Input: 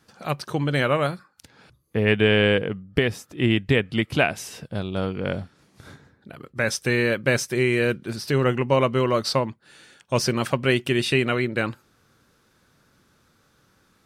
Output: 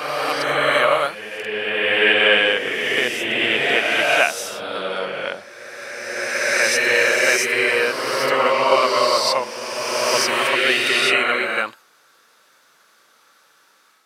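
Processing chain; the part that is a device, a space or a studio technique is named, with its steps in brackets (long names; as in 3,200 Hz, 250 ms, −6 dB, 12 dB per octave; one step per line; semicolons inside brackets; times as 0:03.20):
ghost voice (reversed playback; convolution reverb RT60 2.9 s, pre-delay 22 ms, DRR −4.5 dB; reversed playback; high-pass filter 660 Hz 12 dB per octave)
level +4 dB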